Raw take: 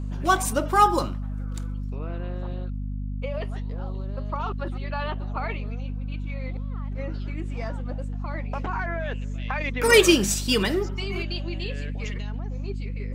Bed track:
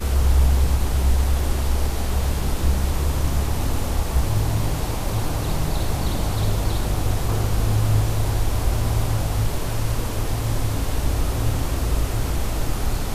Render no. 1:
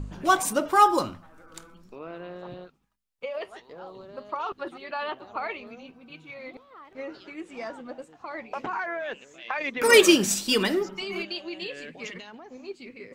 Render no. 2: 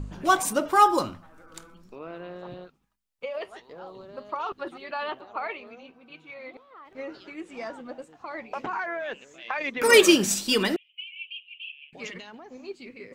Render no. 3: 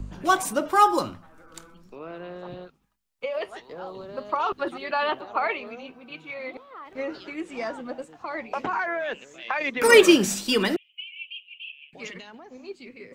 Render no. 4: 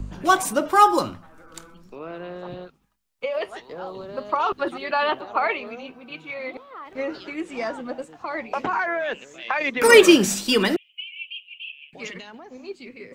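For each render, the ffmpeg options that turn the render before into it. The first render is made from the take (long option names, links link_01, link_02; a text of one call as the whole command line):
ffmpeg -i in.wav -af "bandreject=frequency=50:width_type=h:width=4,bandreject=frequency=100:width_type=h:width=4,bandreject=frequency=150:width_type=h:width=4,bandreject=frequency=200:width_type=h:width=4,bandreject=frequency=250:width_type=h:width=4" out.wav
ffmpeg -i in.wav -filter_complex "[0:a]asettb=1/sr,asplit=3[link_01][link_02][link_03];[link_01]atrim=end=5.214[link_04];[link_02]atrim=start=5.21:end=6.86,asetpts=PTS-STARTPTS,afade=type=in:duration=0.004:curve=qsin,afade=type=out:start_time=1.646:duration=0.004:curve=qsin,bass=frequency=250:gain=-9,treble=frequency=4000:gain=-6[link_05];[link_03]atrim=start=6.856[link_06];[link_04][link_05]acrossfade=duration=0.004:curve1=hsin:curve2=qsin[link_07];[link_07][link_06]acrossfade=duration=0.004:curve1=qsin:curve2=hsin,asettb=1/sr,asplit=3[link_08][link_09][link_10];[link_08]atrim=end=10.764[link_11];[link_09]atrim=start=10.76:end=11.93,asetpts=PTS-STARTPTS,afade=type=in:duration=0.004:curve=qsin,afade=type=out:start_time=1.166:duration=0.004:curve=qsin,asuperpass=centerf=2800:order=8:qfactor=3.2[link_12];[link_10]atrim=start=11.926[link_13];[link_11][link_12]acrossfade=duration=0.004:curve1=hsin:curve2=qsin[link_14];[link_14][link_13]acrossfade=duration=0.004:curve1=qsin:curve2=hsin" out.wav
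ffmpeg -i in.wav -filter_complex "[0:a]acrossover=split=140|610|2800[link_01][link_02][link_03][link_04];[link_04]alimiter=limit=-20.5dB:level=0:latency=1:release=243[link_05];[link_01][link_02][link_03][link_05]amix=inputs=4:normalize=0,dynaudnorm=framelen=300:gausssize=21:maxgain=7.5dB" out.wav
ffmpeg -i in.wav -af "volume=3dB,alimiter=limit=-1dB:level=0:latency=1" out.wav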